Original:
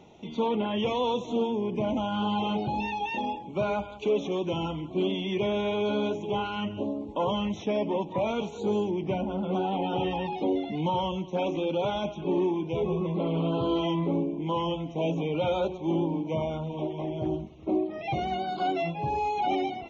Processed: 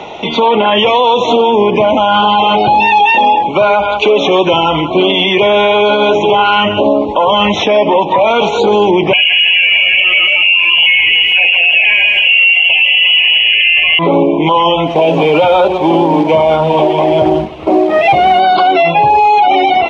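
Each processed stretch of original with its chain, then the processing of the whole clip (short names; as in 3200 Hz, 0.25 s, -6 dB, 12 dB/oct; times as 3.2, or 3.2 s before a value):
9.13–13.99 inverted band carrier 3100 Hz + lo-fi delay 0.163 s, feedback 35%, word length 9-bit, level -9 dB
14.87–18.4 CVSD 64 kbps + high shelf 4600 Hz -10 dB
whole clip: three-band isolator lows -16 dB, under 500 Hz, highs -20 dB, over 4400 Hz; compressor, threshold -32 dBFS; maximiser +33 dB; gain -1 dB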